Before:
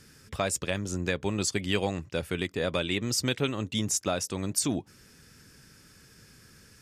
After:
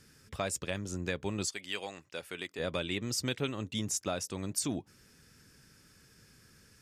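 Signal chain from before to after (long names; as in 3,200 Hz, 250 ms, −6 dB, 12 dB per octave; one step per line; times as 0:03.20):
0:01.46–0:02.58: high-pass filter 1,300 Hz → 550 Hz 6 dB per octave
level −5.5 dB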